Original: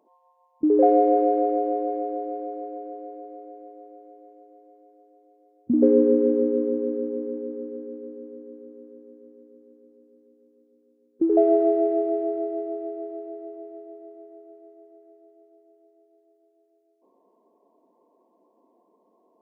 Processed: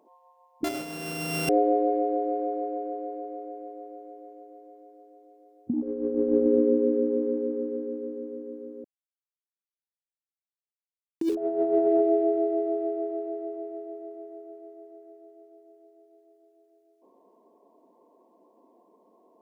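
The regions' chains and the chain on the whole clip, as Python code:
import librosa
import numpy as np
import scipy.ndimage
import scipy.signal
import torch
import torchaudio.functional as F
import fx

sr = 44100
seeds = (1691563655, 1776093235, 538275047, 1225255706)

y = fx.chain(x, sr, fx.sample_sort(block=64),
    fx.room_flutter(wall_m=8.4, rt60_s=1.3), at=(0.64, 1.49))
y = fx.chain(y, sr, fx.sample_gate(floor_db=-33.5),
    fx.peak_eq(hz=480.0, db=-5.0, octaves=0.33),
    fx.env_flatten(amount_pct=50), at=(8.84, 11.35))
y = fx.dynamic_eq(y, sr, hz=1200.0, q=0.82, threshold_db=-33.0, ratio=4.0, max_db=-3)
y = fx.over_compress(y, sr, threshold_db=-23.0, ratio=-0.5)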